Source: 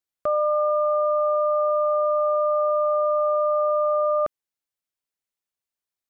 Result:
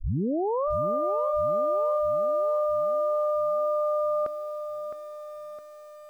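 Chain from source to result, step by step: tape start at the beginning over 0.68 s; lo-fi delay 0.662 s, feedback 55%, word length 8-bit, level -9 dB; gain -5 dB

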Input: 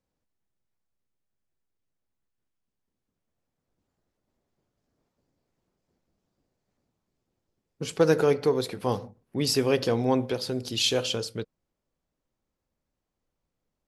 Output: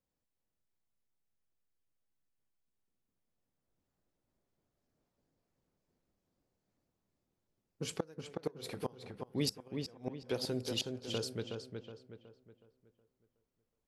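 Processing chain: high shelf 8200 Hz +2.5 dB; flipped gate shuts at -15 dBFS, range -28 dB; darkening echo 0.369 s, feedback 41%, low-pass 3100 Hz, level -5 dB; gain -6.5 dB

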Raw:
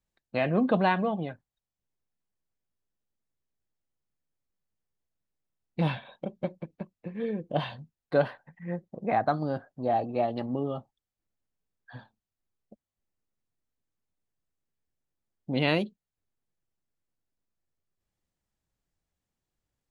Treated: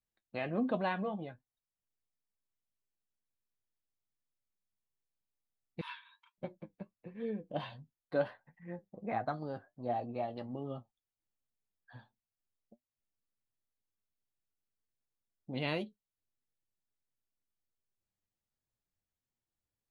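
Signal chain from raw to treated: flange 1.4 Hz, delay 7.6 ms, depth 3 ms, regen +52%; 5.81–6.38 brick-wall FIR high-pass 890 Hz; gain -5 dB

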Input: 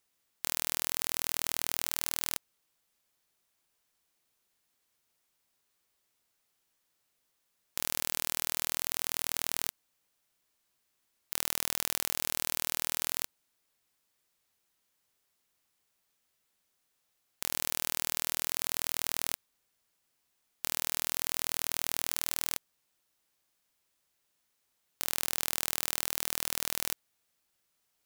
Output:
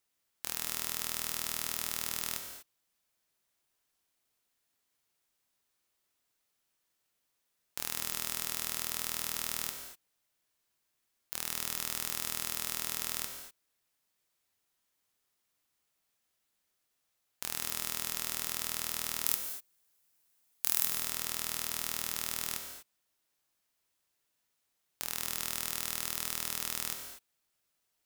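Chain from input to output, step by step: 19.24–20.85 high shelf 7100 Hz +10 dB; non-linear reverb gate 0.27 s flat, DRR 4 dB; gain -4 dB

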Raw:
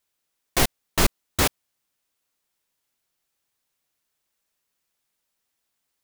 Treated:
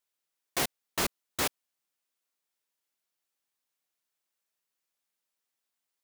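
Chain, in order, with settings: HPF 260 Hz 6 dB/oct; gain -7.5 dB

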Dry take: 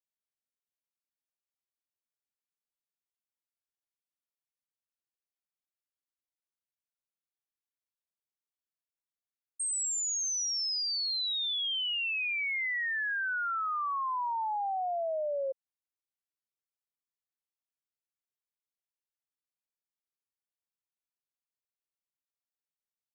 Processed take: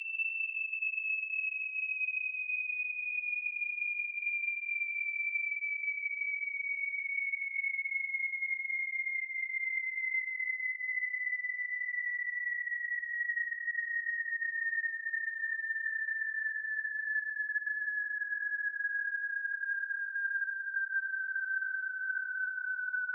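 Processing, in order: Paulstretch 17×, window 0.05 s, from 12.22; frequency shift +170 Hz; gain -3 dB

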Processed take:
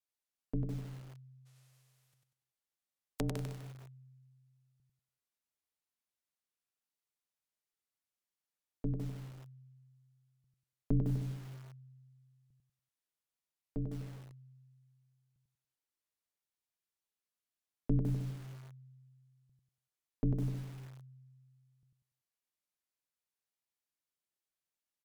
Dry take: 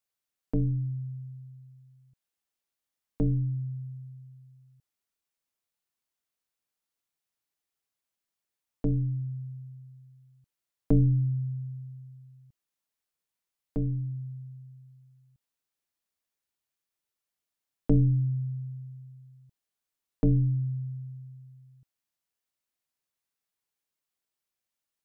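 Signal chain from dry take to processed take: 1.45–3.47 spectral whitening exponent 0.3; treble ducked by the level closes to 320 Hz, closed at -24 dBFS; on a send: feedback echo 96 ms, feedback 34%, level -3.5 dB; on the sum: lo-fi delay 0.155 s, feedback 35%, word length 7-bit, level -6 dB; gain -8 dB

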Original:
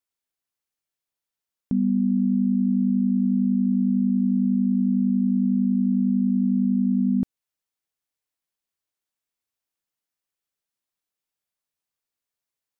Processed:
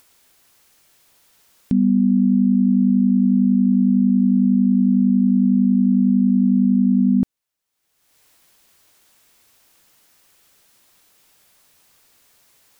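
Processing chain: upward compressor, threshold -42 dBFS; gain +5.5 dB

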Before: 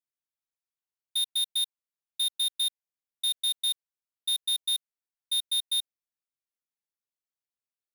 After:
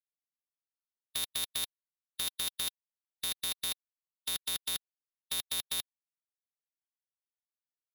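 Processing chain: companded quantiser 4-bit; low shelf 350 Hz +4 dB; spectral compressor 2:1; gain +8.5 dB

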